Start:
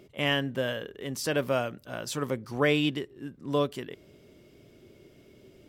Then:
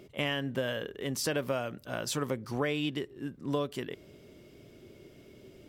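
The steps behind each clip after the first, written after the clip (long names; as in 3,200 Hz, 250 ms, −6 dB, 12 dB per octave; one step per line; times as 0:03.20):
downward compressor 6 to 1, threshold −29 dBFS, peak gain reduction 9.5 dB
level +1.5 dB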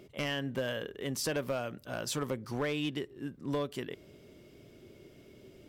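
gain into a clipping stage and back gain 24 dB
level −1.5 dB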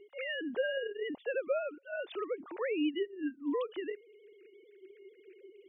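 three sine waves on the formant tracks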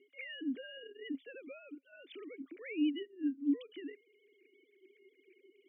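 formant filter i
level +6.5 dB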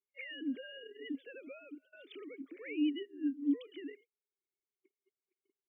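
echo ahead of the sound 103 ms −19.5 dB
noise gate −58 dBFS, range −38 dB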